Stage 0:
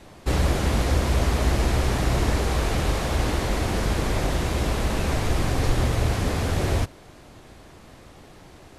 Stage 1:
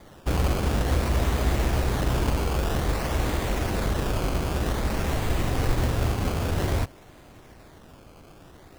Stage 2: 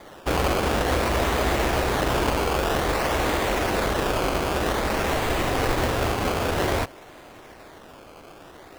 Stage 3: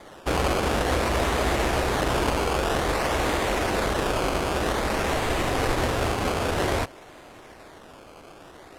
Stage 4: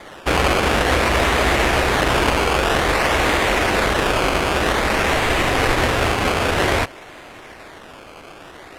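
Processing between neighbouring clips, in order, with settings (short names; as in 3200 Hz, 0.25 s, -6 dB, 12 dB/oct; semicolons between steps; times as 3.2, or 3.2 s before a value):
decimation with a swept rate 16×, swing 100% 0.52 Hz; gain -2 dB
tone controls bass -12 dB, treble -4 dB; gain +7.5 dB
Chebyshev low-pass 11000 Hz, order 2
bell 2200 Hz +6 dB 1.6 oct; gain +5 dB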